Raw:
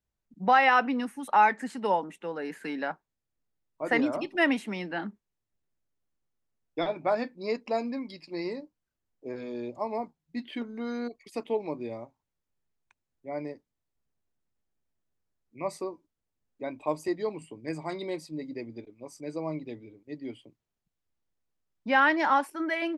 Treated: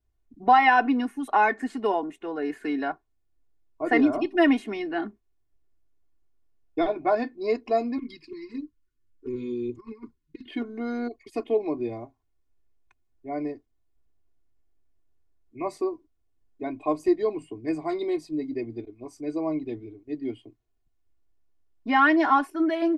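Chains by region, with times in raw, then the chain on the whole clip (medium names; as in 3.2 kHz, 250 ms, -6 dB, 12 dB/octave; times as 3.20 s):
7.98–10.46 s: compressor with a negative ratio -36 dBFS, ratio -0.5 + touch-sensitive flanger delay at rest 10.5 ms, full sweep at -32.5 dBFS + Butterworth band-stop 670 Hz, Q 0.97
whole clip: tilt EQ -2 dB/octave; comb 2.8 ms, depth 93%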